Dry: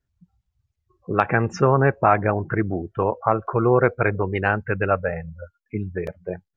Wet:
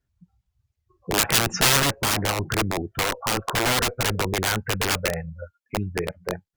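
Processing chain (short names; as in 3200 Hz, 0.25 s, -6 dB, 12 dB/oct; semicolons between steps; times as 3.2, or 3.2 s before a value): wrapped overs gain 16.5 dB; 1.13–1.8 high shelf 2200 Hz +7.5 dB; added harmonics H 5 -36 dB, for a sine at -6 dBFS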